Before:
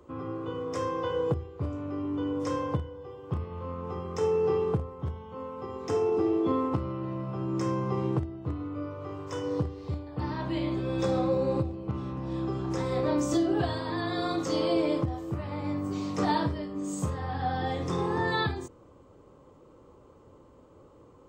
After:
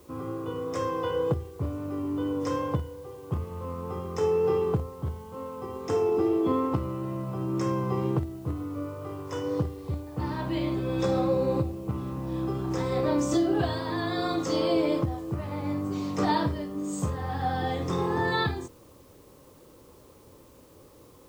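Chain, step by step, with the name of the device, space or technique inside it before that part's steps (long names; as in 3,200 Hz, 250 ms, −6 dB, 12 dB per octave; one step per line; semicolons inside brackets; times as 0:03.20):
plain cassette with noise reduction switched in (one half of a high-frequency compander decoder only; tape wow and flutter 17 cents; white noise bed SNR 33 dB)
level +1.5 dB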